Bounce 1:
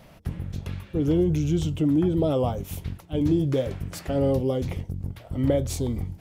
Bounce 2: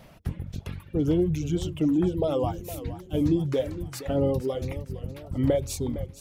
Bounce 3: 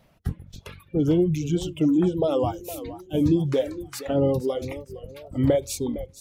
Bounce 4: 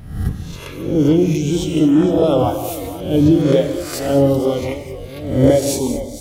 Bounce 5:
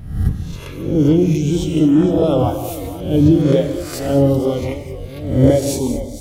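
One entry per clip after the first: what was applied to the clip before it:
reverb removal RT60 2 s; modulated delay 463 ms, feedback 49%, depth 130 cents, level -14 dB
spectral noise reduction 12 dB; trim +3 dB
reverse spectral sustain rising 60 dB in 0.69 s; gated-style reverb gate 250 ms flat, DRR 6.5 dB; trim +5.5 dB
bass shelf 230 Hz +7 dB; trim -2.5 dB

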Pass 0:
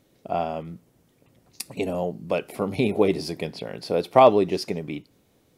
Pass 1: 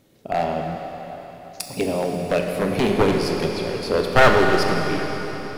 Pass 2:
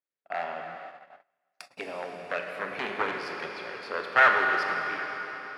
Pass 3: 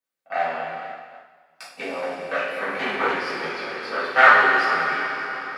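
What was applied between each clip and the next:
one-sided wavefolder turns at -17.5 dBFS; reverberation RT60 4.2 s, pre-delay 22 ms, DRR 1.5 dB; trim +3.5 dB
gate -32 dBFS, range -29 dB; band-pass filter 1.6 kHz, Q 1.8
two-slope reverb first 0.55 s, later 2.3 s, from -19 dB, DRR -8.5 dB; trim -1.5 dB

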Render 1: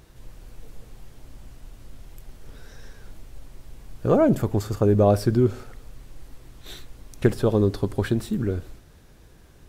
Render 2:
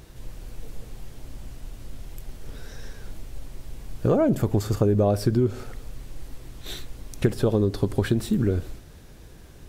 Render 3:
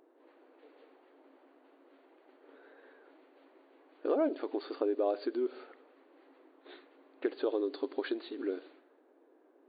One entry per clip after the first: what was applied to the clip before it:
peaking EQ 1.2 kHz -2.5 dB 1.4 oct; compression 4:1, threshold -23 dBFS, peak gain reduction 9 dB; trim +5 dB
level-controlled noise filter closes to 740 Hz, open at -18.5 dBFS; brick-wall FIR band-pass 260–4700 Hz; trim -8 dB

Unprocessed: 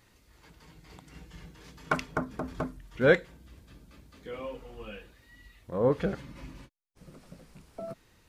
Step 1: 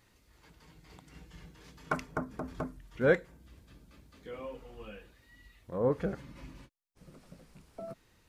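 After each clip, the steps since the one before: dynamic bell 3.4 kHz, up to -7 dB, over -52 dBFS, Q 1.1; trim -3.5 dB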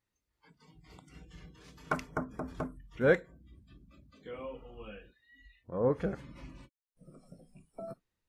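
spectral noise reduction 21 dB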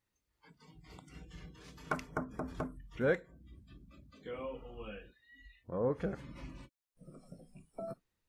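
compression 1.5:1, threshold -39 dBFS, peak gain reduction 7.5 dB; trim +1 dB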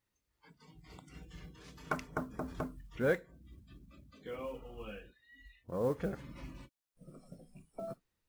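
modulation noise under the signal 29 dB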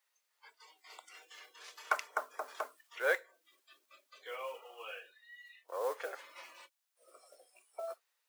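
Bessel high-pass 840 Hz, order 8; trim +6.5 dB

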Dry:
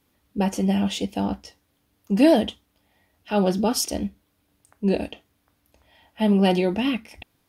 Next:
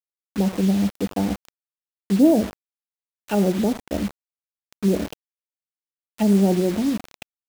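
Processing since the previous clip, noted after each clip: low-pass that closes with the level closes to 500 Hz, closed at -20 dBFS; feedback delay 79 ms, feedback 39%, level -18 dB; bit crusher 6-bit; trim +2.5 dB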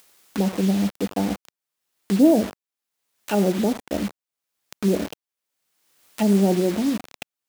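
bass shelf 100 Hz -11 dB; upward compressor, threshold -28 dBFS; trim +1 dB

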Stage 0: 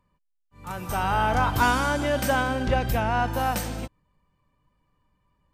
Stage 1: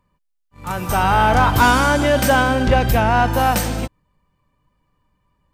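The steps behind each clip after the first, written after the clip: waveshaping leveller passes 1; trim +5.5 dB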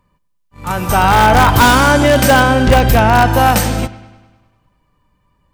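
in parallel at -8.5 dB: integer overflow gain 8 dB; on the sum: feedback echo behind a low-pass 100 ms, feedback 59%, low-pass 3.9 kHz, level -17.5 dB; trim +3 dB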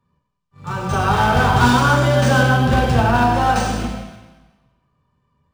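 reverberation RT60 1.1 s, pre-delay 3 ms, DRR -4 dB; decimation joined by straight lines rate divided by 3×; trim -14 dB

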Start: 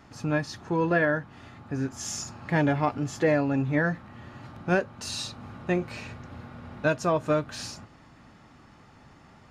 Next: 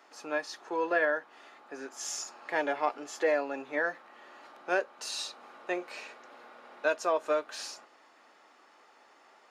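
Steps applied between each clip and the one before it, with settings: high-pass 400 Hz 24 dB/octave; trim -2.5 dB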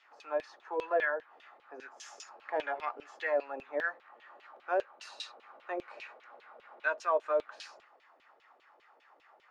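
LFO band-pass saw down 5 Hz 410–3400 Hz; trim +3 dB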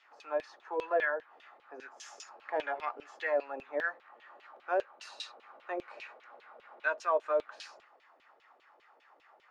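no audible change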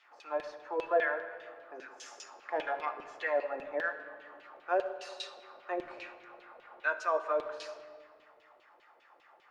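simulated room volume 2800 m³, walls mixed, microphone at 0.87 m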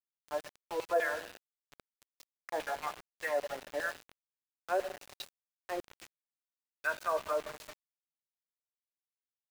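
small samples zeroed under -38 dBFS; trim -2 dB

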